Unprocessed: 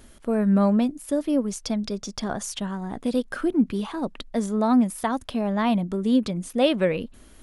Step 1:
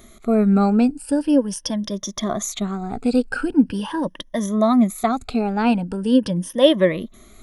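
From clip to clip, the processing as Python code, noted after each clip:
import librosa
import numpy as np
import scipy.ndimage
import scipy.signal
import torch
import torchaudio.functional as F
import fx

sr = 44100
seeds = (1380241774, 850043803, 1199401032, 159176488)

y = fx.spec_ripple(x, sr, per_octave=1.2, drift_hz=0.42, depth_db=15)
y = y * 10.0 ** (2.0 / 20.0)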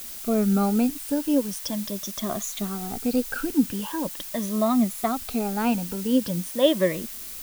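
y = fx.dmg_noise_colour(x, sr, seeds[0], colour='blue', level_db=-32.0)
y = y * 10.0 ** (-5.5 / 20.0)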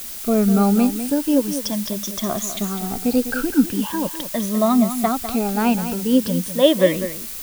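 y = x + 10.0 ** (-10.5 / 20.0) * np.pad(x, (int(201 * sr / 1000.0), 0))[:len(x)]
y = y * 10.0 ** (5.0 / 20.0)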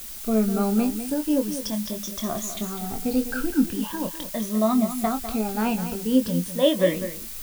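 y = fx.low_shelf(x, sr, hz=61.0, db=10.0)
y = fx.doubler(y, sr, ms=23.0, db=-7)
y = y * 10.0 ** (-6.0 / 20.0)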